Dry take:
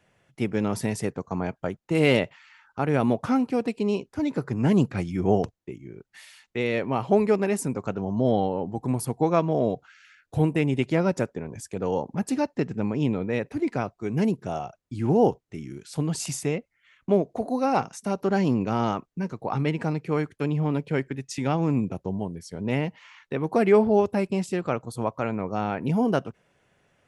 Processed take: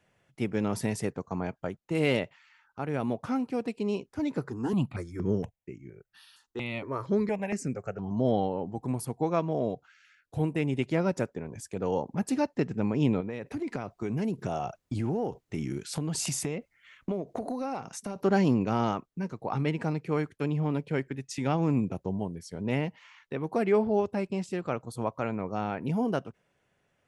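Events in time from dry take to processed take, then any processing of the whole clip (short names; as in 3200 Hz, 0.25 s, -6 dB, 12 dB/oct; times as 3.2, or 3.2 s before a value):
4.5–8.11 step phaser 4.3 Hz 600–3500 Hz
13.2–18.16 compressor 10:1, threshold -31 dBFS
23.64–24.5 LPF 8200 Hz
whole clip: vocal rider 2 s; gain -4.5 dB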